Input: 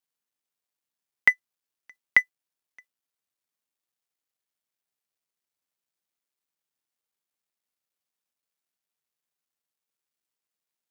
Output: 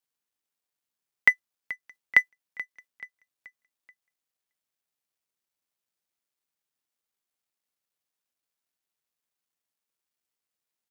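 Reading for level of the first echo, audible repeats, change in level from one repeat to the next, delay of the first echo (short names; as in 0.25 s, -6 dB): -17.0 dB, 3, -7.5 dB, 0.431 s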